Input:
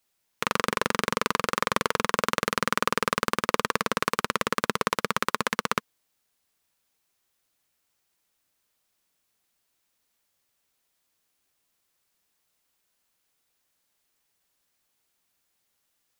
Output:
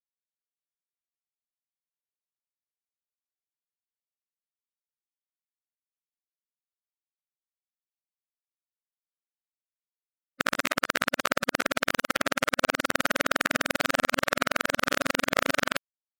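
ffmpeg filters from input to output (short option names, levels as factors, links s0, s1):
-af "areverse,asetrate=53981,aresample=44100,atempo=0.816958,afftfilt=real='re*gte(hypot(re,im),0.00501)':imag='im*gte(hypot(re,im),0.00501)':win_size=1024:overlap=0.75"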